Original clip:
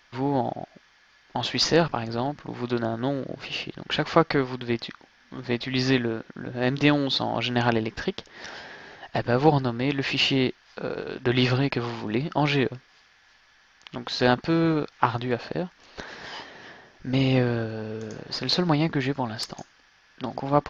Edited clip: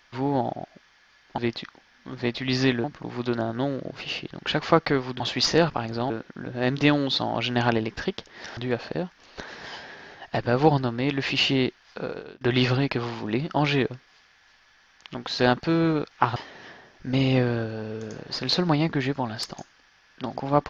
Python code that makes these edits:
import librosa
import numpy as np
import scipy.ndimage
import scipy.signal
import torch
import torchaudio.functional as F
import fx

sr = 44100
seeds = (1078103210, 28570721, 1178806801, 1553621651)

y = fx.edit(x, sr, fx.swap(start_s=1.38, length_s=0.9, other_s=4.64, other_length_s=1.46),
    fx.fade_out_to(start_s=10.83, length_s=0.39, floor_db=-20.5),
    fx.move(start_s=15.17, length_s=1.19, to_s=8.57), tone=tone)